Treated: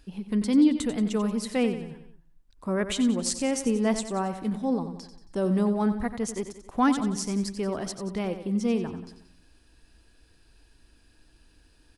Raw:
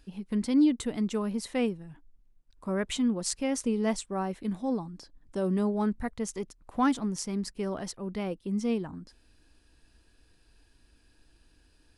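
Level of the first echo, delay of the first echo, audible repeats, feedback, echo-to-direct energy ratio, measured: -10.5 dB, 91 ms, 4, 49%, -9.5 dB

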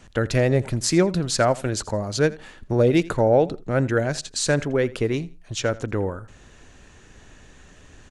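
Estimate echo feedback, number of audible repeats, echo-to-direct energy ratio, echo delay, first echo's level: 23%, 2, -20.0 dB, 83 ms, -20.0 dB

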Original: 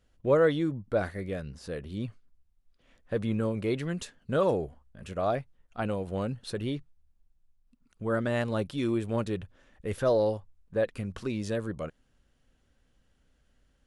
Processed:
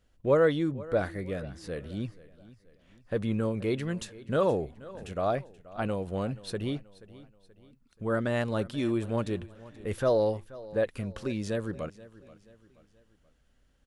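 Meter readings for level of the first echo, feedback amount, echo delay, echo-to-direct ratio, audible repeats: -19.0 dB, 43%, 480 ms, -18.0 dB, 3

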